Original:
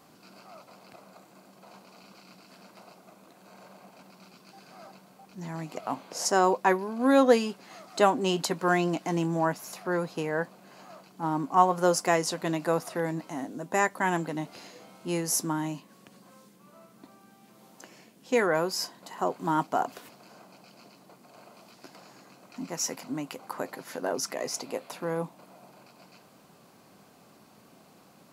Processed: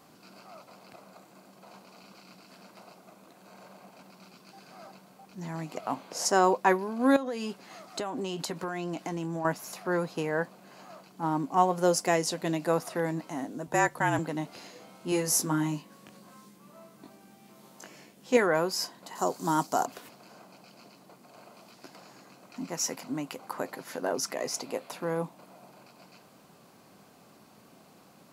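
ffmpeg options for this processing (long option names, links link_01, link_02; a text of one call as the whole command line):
ffmpeg -i in.wav -filter_complex "[0:a]asettb=1/sr,asplit=3[link_01][link_02][link_03];[link_01]atrim=end=7.164[link_04];[link_02]atrim=start=7.16:end=9.45,asetpts=PTS-STARTPTS,afade=type=in:duration=0.004:curve=qsin,afade=type=out:start_time=2.286:duration=0.004:curve=qsin,acompressor=threshold=-29dB:ratio=12:attack=3.2:release=140:knee=1:detection=peak[link_05];[link_03]atrim=start=9.446[link_06];[link_04][link_05]acrossfade=duration=0.004:curve1=hsin:curve2=qsin[link_07];[link_07][link_06]acrossfade=duration=0.004:curve1=qsin:curve2=hsin,asettb=1/sr,asplit=3[link_08][link_09][link_10];[link_08]atrim=end=11.384[link_11];[link_09]atrim=start=11.38:end=12.7,asetpts=PTS-STARTPTS,afade=type=in:duration=0.004:curve=qsin,afade=type=out:start_time=1.316:duration=0.004:curve=qsin,equalizer=frequency=1200:width=1.5:gain=-5.5[link_12];[link_10]atrim=start=12.696[link_13];[link_11][link_12]acrossfade=duration=0.004:curve1=hsin:curve2=qsin[link_14];[link_14][link_13]acrossfade=duration=0.004:curve1=qsin:curve2=hsin,asettb=1/sr,asplit=3[link_15][link_16][link_17];[link_15]atrim=end=13.674[link_18];[link_16]atrim=start=13.67:end=14.19,asetpts=PTS-STARTPTS,afade=type=in:duration=0.004:curve=qsin,afade=type=out:start_time=0.516:duration=0.004:curve=qsin,afreqshift=-41[link_19];[link_17]atrim=start=14.186[link_20];[link_18][link_19]acrossfade=duration=0.004:curve1=hsin:curve2=qsin[link_21];[link_21][link_20]acrossfade=duration=0.004:curve1=qsin:curve2=hsin,asettb=1/sr,asplit=3[link_22][link_23][link_24];[link_22]atrim=end=15.104[link_25];[link_23]atrim=start=15.1:end=18.37,asetpts=PTS-STARTPTS,afade=type=in:duration=0.004:curve=qsin,afade=type=out:start_time=3.266:duration=0.004:curve=qsin,asplit=2[link_26][link_27];[link_27]adelay=20,volume=-2.5dB[link_28];[link_26][link_28]amix=inputs=2:normalize=0,atrim=end_sample=144207[link_29];[link_24]atrim=start=18.366[link_30];[link_25][link_29]acrossfade=duration=0.004:curve1=hsin:curve2=qsin[link_31];[link_31][link_30]acrossfade=duration=0.004:curve1=qsin:curve2=hsin,asettb=1/sr,asplit=3[link_32][link_33][link_34];[link_32]atrim=end=19.154[link_35];[link_33]atrim=start=19.15:end=19.86,asetpts=PTS-STARTPTS,afade=type=in:duration=0.004:curve=qsin,afade=type=out:start_time=0.706:duration=0.004:curve=qsin,highshelf=frequency=3800:width_type=q:width=1.5:gain=10.5[link_36];[link_34]atrim=start=19.856[link_37];[link_35][link_36]acrossfade=duration=0.004:curve1=hsin:curve2=qsin[link_38];[link_38][link_37]acrossfade=duration=0.004:curve1=qsin:curve2=hsin" out.wav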